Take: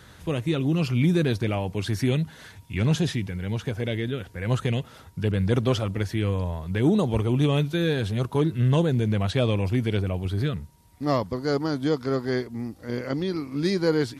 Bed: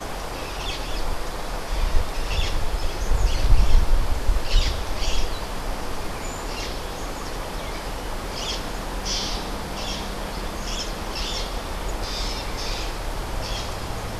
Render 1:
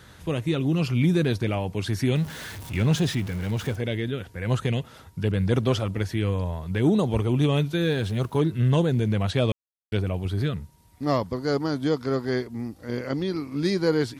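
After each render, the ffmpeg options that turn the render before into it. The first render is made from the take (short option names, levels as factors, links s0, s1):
-filter_complex "[0:a]asettb=1/sr,asplit=3[s0][s1][s2];[s0]atrim=end=2.154[s3];[s1]atrim=start=2.15:end=3.76,asetpts=PTS-STARTPTS,afade=t=in:d=0.004:c=qsin,afade=t=out:st=1.606:d=0.004:c=qsin,aeval=exprs='val(0)+0.5*0.0178*sgn(val(0))':c=same[s4];[s2]atrim=start=3.756[s5];[s3][s4]acrossfade=d=0.004:c1=hsin:c2=qsin[s6];[s6][s5]acrossfade=d=0.004:c1=qsin:c2=hsin,asettb=1/sr,asplit=3[s7][s8][s9];[s7]atrim=end=7.824[s10];[s8]atrim=start=7.82:end=8.39,asetpts=PTS-STARTPTS,afade=t=in:d=0.004:c=qsin,afade=t=out:st=0.566:d=0.004:c=qsin,acrusher=bits=8:mix=0:aa=0.5[s11];[s9]atrim=start=8.386[s12];[s10][s11]acrossfade=d=0.004:c1=hsin:c2=qsin[s13];[s13][s12]acrossfade=d=0.004:c1=qsin:c2=hsin,asplit=3[s14][s15][s16];[s14]atrim=end=9.52,asetpts=PTS-STARTPTS,afade=t=out:st=9.516:d=0.004:c=hsin[s17];[s15]atrim=start=9.52:end=9.92,asetpts=PTS-STARTPTS,volume=0[s18];[s16]atrim=start=9.92,asetpts=PTS-STARTPTS,afade=t=in:d=0.004:c=hsin[s19];[s17][s18][s19]concat=n=3:v=0:a=1"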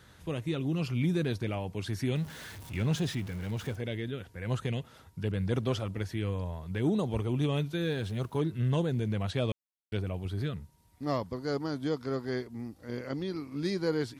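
-af "volume=0.422"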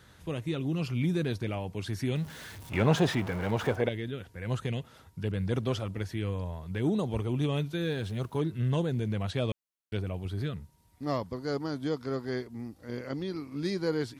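-filter_complex "[0:a]asettb=1/sr,asplit=3[s0][s1][s2];[s0]atrim=end=2.724[s3];[s1]atrim=start=2.72:end=3.89,asetpts=PTS-STARTPTS,afade=t=in:d=0.004:c=qsin,afade=t=out:st=1.166:d=0.004:c=qsin,equalizer=f=800:w=0.45:g=15[s4];[s2]atrim=start=3.886[s5];[s3][s4]acrossfade=d=0.004:c1=hsin:c2=qsin[s6];[s6][s5]acrossfade=d=0.004:c1=qsin:c2=hsin"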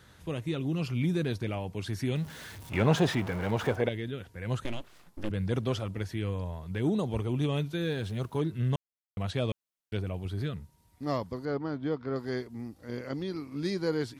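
-filter_complex "[0:a]asettb=1/sr,asplit=3[s0][s1][s2];[s0]atrim=end=4.644[s3];[s1]atrim=start=4.64:end=5.3,asetpts=PTS-STARTPTS,afade=t=in:d=0.004:c=qsin,afade=t=out:st=0.656:d=0.004:c=qsin,aeval=exprs='abs(val(0))':c=same[s4];[s2]atrim=start=5.296[s5];[s3][s4]acrossfade=d=0.004:c1=hsin:c2=qsin[s6];[s6][s5]acrossfade=d=0.004:c1=qsin:c2=hsin,asettb=1/sr,asplit=3[s7][s8][s9];[s7]atrim=end=11.454[s10];[s8]atrim=start=11.45:end=12.16,asetpts=PTS-STARTPTS,afade=t=in:d=0.004:c=qsin,afade=t=out:st=0.706:d=0.004:c=qsin,lowpass=2600[s11];[s9]atrim=start=12.156[s12];[s10][s11]acrossfade=d=0.004:c1=hsin:c2=qsin[s13];[s13][s12]acrossfade=d=0.004:c1=qsin:c2=hsin,asplit=3[s14][s15][s16];[s14]atrim=end=8.76,asetpts=PTS-STARTPTS,afade=t=out:st=8.756:d=0.004:c=hsin[s17];[s15]atrim=start=8.76:end=9.17,asetpts=PTS-STARTPTS,volume=0[s18];[s16]atrim=start=9.17,asetpts=PTS-STARTPTS,afade=t=in:d=0.004:c=hsin[s19];[s17][s18][s19]concat=n=3:v=0:a=1"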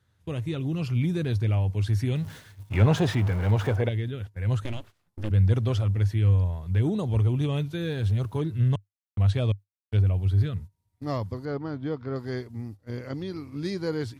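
-af "agate=range=0.141:threshold=0.00631:ratio=16:detection=peak,equalizer=f=100:t=o:w=0.56:g=15"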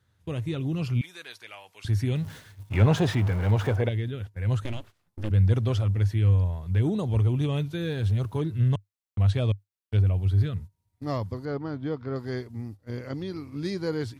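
-filter_complex "[0:a]asettb=1/sr,asplit=3[s0][s1][s2];[s0]atrim=end=1.014[s3];[s1]atrim=start=1.01:end=1.85,asetpts=PTS-STARTPTS,afade=t=in:d=0.004:c=qsin,afade=t=out:st=0.836:d=0.004:c=qsin,highpass=1200[s4];[s2]atrim=start=1.846[s5];[s3][s4]acrossfade=d=0.004:c1=hsin:c2=qsin[s6];[s6][s5]acrossfade=d=0.004:c1=qsin:c2=hsin"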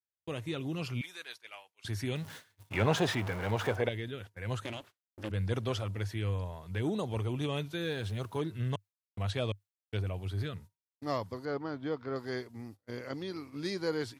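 -af "agate=range=0.0224:threshold=0.0112:ratio=3:detection=peak,highpass=f=450:p=1"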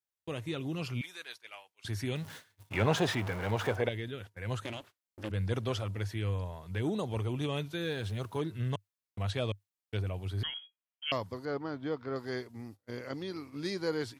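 -filter_complex "[0:a]asettb=1/sr,asplit=3[s0][s1][s2];[s0]atrim=end=10.434[s3];[s1]atrim=start=10.43:end=11.12,asetpts=PTS-STARTPTS,afade=t=in:d=0.004:c=qsin,afade=t=out:st=0.686:d=0.004:c=qsin,lowpass=f=2900:t=q:w=0.5098,lowpass=f=2900:t=q:w=0.6013,lowpass=f=2900:t=q:w=0.9,lowpass=f=2900:t=q:w=2.563,afreqshift=-3400[s4];[s2]atrim=start=11.116[s5];[s3][s4]acrossfade=d=0.004:c1=hsin:c2=qsin[s6];[s6][s5]acrossfade=d=0.004:c1=qsin:c2=hsin"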